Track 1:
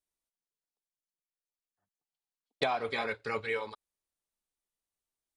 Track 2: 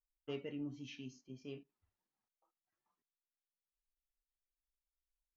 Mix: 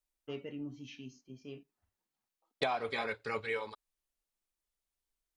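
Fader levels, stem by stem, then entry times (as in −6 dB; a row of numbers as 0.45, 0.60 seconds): −2.5, +1.0 decibels; 0.00, 0.00 seconds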